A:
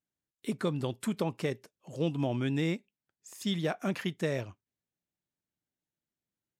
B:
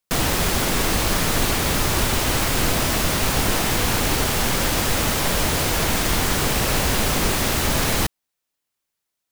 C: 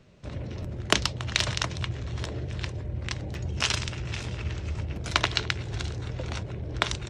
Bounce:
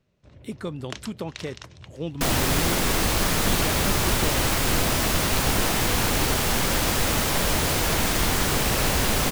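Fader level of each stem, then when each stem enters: -1.0, -2.0, -14.0 dB; 0.00, 2.10, 0.00 s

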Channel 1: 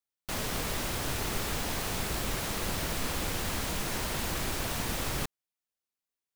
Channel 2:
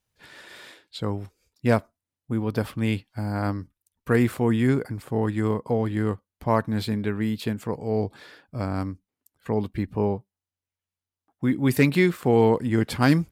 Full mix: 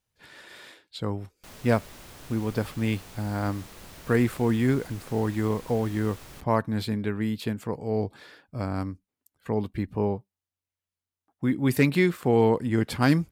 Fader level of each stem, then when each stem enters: -13.5, -2.0 dB; 1.15, 0.00 s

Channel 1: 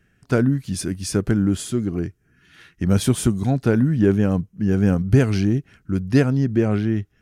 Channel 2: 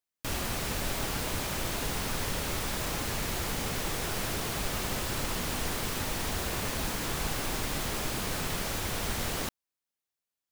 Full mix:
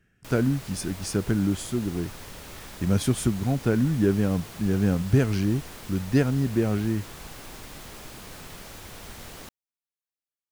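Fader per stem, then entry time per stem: -5.0, -9.5 dB; 0.00, 0.00 s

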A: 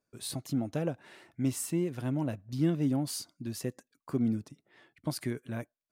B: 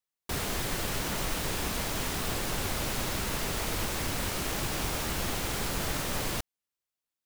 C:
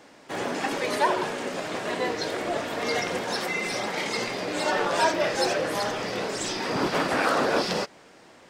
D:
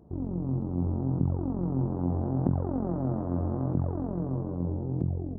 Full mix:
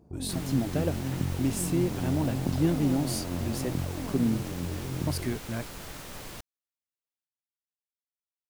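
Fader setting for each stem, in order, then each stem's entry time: +2.5 dB, -10.0 dB, off, -3.5 dB; 0.00 s, 0.00 s, off, 0.00 s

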